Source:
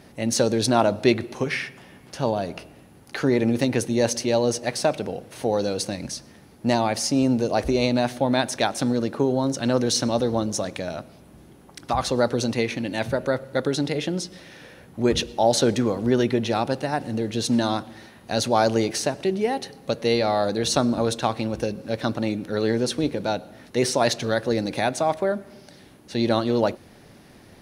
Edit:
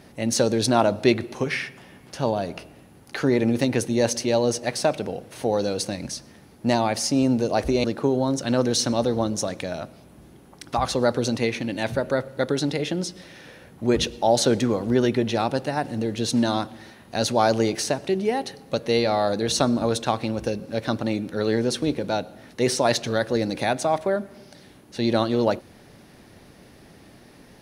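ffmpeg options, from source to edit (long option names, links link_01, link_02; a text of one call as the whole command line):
ffmpeg -i in.wav -filter_complex "[0:a]asplit=2[link_01][link_02];[link_01]atrim=end=7.842[link_03];[link_02]atrim=start=8.998[link_04];[link_03][link_04]acrossfade=duration=0.004:curve1=hsin:curve2=hsin" out.wav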